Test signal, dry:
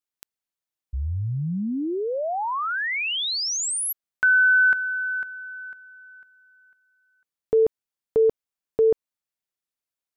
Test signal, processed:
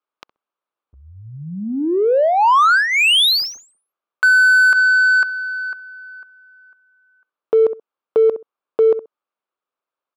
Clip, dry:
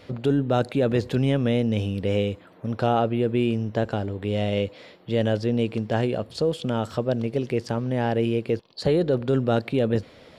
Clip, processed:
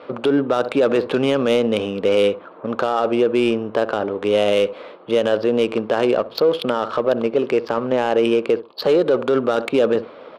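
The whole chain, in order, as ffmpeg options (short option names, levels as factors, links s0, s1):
-filter_complex "[0:a]highpass=460,equalizer=f=730:t=q:w=4:g=-4,equalizer=f=1200:t=q:w=4:g=6,equalizer=f=1900:t=q:w=4:g=-8,lowpass=f=5200:w=0.5412,lowpass=f=5200:w=1.3066,adynamicsmooth=sensitivity=3.5:basefreq=1600,asplit=2[s0][s1];[s1]adelay=65,lowpass=f=970:p=1,volume=0.133,asplit=2[s2][s3];[s3]adelay=65,lowpass=f=970:p=1,volume=0.19[s4];[s2][s4]amix=inputs=2:normalize=0[s5];[s0][s5]amix=inputs=2:normalize=0,alimiter=level_in=13.3:limit=0.891:release=50:level=0:latency=1,volume=0.422"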